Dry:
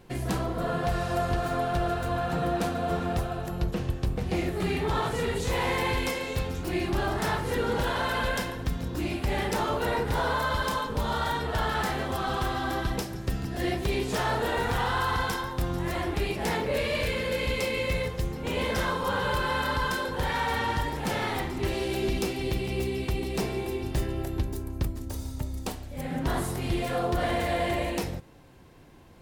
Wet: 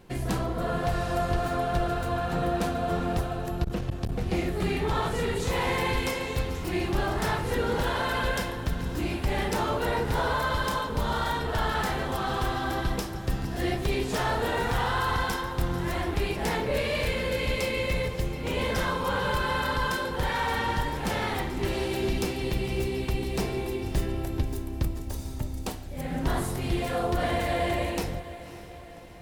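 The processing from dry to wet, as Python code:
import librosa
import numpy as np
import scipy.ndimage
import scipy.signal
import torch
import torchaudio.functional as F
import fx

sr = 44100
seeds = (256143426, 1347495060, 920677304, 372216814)

y = fx.octave_divider(x, sr, octaves=2, level_db=-6.0)
y = fx.echo_diffused(y, sr, ms=569, feedback_pct=56, wet_db=-15.0)
y = fx.transformer_sat(y, sr, knee_hz=150.0, at=(3.64, 4.12))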